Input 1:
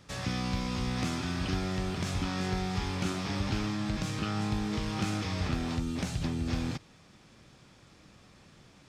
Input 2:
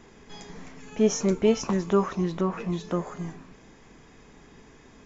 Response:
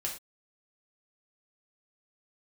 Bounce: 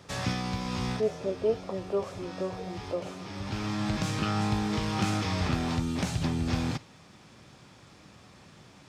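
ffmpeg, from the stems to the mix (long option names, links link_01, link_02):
-filter_complex "[0:a]equalizer=frequency=890:width_type=o:width=0.77:gain=3,volume=2.5dB,asplit=2[link_01][link_02];[link_02]volume=-17dB[link_03];[1:a]bandpass=frequency=560:width_type=q:width=3.4:csg=0,volume=2dB,asplit=2[link_04][link_05];[link_05]apad=whole_len=392008[link_06];[link_01][link_06]sidechaincompress=threshold=-54dB:ratio=8:attack=42:release=485[link_07];[2:a]atrim=start_sample=2205[link_08];[link_03][link_08]afir=irnorm=-1:irlink=0[link_09];[link_07][link_04][link_09]amix=inputs=3:normalize=0,highpass=62"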